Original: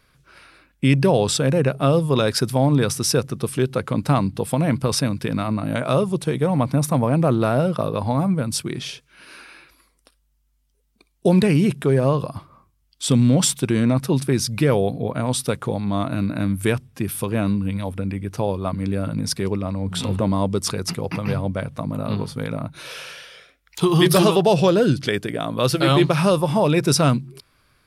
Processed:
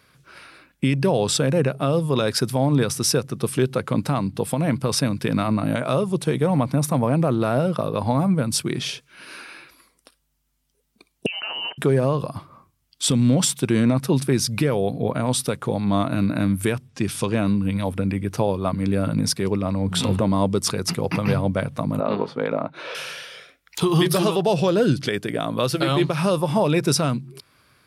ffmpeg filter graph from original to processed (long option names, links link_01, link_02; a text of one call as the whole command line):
ffmpeg -i in.wav -filter_complex "[0:a]asettb=1/sr,asplit=3[link_01][link_02][link_03];[link_01]atrim=end=11.264[link_04];[link_02]atrim=start=11.26:end=11.78,asetpts=PTS-STARTPTS,afade=type=in:duration=0.004:curve=qsin,afade=type=out:start_time=0.516:duration=0.004:curve=qsin,highpass=470,acompressor=threshold=-27dB:ratio=10:attack=3.2:release=140:knee=1:detection=peak,lowpass=frequency=2700:width_type=q:width=0.5098,lowpass=frequency=2700:width_type=q:width=0.6013,lowpass=frequency=2700:width_type=q:width=0.9,lowpass=frequency=2700:width_type=q:width=2.563,afreqshift=-3200[link_05];[link_03]atrim=start=11.776[link_06];[link_04][link_05]acrossfade=duration=0.004:curve1=hsin:curve2=qsin[link_07];[link_07][link_06]acrossfade=duration=0.004:curve1=qsin:curve2=hsin,asettb=1/sr,asplit=3[link_08][link_09][link_10];[link_08]atrim=end=16.894[link_11];[link_09]atrim=start=16.89:end=17.39,asetpts=PTS-STARTPTS,afade=type=in:duration=0.004:curve=qsin,afade=type=out:start_time=0.496:duration=0.004:curve=qsin,lowpass=frequency=6800:width=0.5412,lowpass=frequency=6800:width=1.3066,aemphasis=mode=production:type=50fm[link_12];[link_10]atrim=start=17.386[link_13];[link_11][link_12]acrossfade=duration=0.004:curve1=hsin:curve2=qsin[link_14];[link_14][link_13]acrossfade=duration=0.004:curve1=qsin:curve2=hsin,asettb=1/sr,asplit=3[link_15][link_16][link_17];[link_15]atrim=end=22.004[link_18];[link_16]atrim=start=22:end=22.95,asetpts=PTS-STARTPTS,afade=type=in:duration=0.004:curve=qsin,afade=type=out:start_time=0.946:duration=0.004:curve=qsin,highpass=510,lowpass=3300,acontrast=27,tiltshelf=frequency=740:gain=7[link_19];[link_17]atrim=start=22.946[link_20];[link_18][link_19]acrossfade=duration=0.004:curve1=hsin:curve2=qsin[link_21];[link_21][link_20]acrossfade=duration=0.004:curve1=qsin:curve2=hsin,highpass=93,alimiter=limit=-12.5dB:level=0:latency=1:release=477,volume=3.5dB" out.wav